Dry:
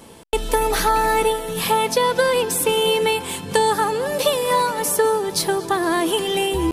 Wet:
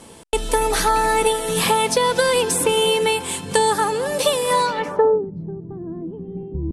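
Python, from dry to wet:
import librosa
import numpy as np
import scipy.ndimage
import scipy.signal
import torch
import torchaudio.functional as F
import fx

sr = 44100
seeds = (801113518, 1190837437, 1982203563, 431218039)

y = fx.filter_sweep_lowpass(x, sr, from_hz=9400.0, to_hz=180.0, start_s=4.58, end_s=5.31, q=1.6)
y = fx.band_squash(y, sr, depth_pct=70, at=(1.26, 2.85))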